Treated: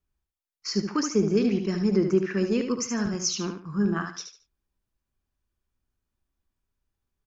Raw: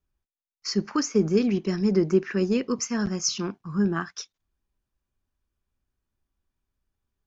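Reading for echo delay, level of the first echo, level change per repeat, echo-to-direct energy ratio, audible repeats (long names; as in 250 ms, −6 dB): 73 ms, −7.0 dB, −11.0 dB, −6.5 dB, 3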